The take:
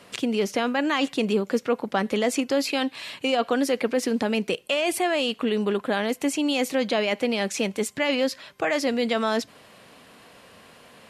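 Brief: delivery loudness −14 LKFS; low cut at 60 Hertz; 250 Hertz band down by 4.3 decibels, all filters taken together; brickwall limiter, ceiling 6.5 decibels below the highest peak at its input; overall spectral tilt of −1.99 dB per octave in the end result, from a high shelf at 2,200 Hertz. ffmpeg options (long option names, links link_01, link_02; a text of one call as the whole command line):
ffmpeg -i in.wav -af "highpass=60,equalizer=frequency=250:width_type=o:gain=-5,highshelf=frequency=2200:gain=5.5,volume=11.5dB,alimiter=limit=-2dB:level=0:latency=1" out.wav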